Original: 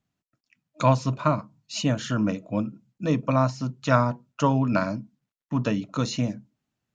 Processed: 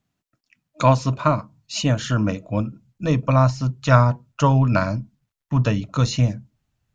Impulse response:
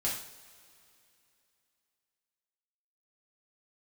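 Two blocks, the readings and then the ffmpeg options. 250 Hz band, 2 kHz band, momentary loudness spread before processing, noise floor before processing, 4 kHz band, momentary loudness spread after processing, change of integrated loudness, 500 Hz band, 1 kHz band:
+2.0 dB, +4.5 dB, 8 LU, below −85 dBFS, +4.5 dB, 10 LU, +5.0 dB, +3.5 dB, +4.0 dB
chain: -af "asubboost=boost=8.5:cutoff=83,volume=4.5dB"

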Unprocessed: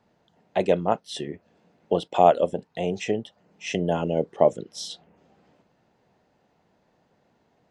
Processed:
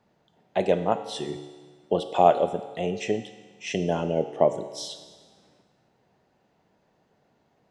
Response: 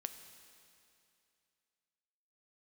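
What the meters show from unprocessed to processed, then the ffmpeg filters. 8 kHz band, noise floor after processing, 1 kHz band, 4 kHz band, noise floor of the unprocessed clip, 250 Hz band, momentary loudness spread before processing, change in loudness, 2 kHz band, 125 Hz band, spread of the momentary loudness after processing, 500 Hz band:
−0.5 dB, −68 dBFS, −1.0 dB, −0.5 dB, −68 dBFS, −1.0 dB, 17 LU, −1.0 dB, −1.0 dB, −1.5 dB, 16 LU, −1.0 dB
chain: -filter_complex "[1:a]atrim=start_sample=2205,asetrate=79380,aresample=44100[link_01];[0:a][link_01]afir=irnorm=-1:irlink=0,volume=7dB"

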